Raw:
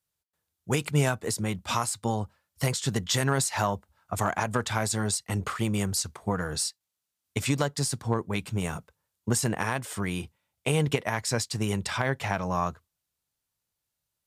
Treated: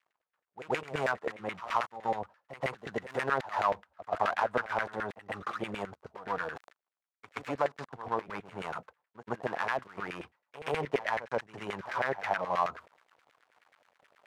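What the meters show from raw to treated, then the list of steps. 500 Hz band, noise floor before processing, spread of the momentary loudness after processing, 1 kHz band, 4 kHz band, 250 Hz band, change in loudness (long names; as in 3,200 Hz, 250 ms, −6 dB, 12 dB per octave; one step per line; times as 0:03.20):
−2.5 dB, −84 dBFS, 12 LU, 0.0 dB, −13.0 dB, −12.0 dB, −5.5 dB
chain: gap after every zero crossing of 0.16 ms
reversed playback
upward compression, threshold −29 dBFS
reversed playback
auto-filter band-pass saw down 9.4 Hz 500–2,100 Hz
backwards echo 126 ms −14 dB
level +5 dB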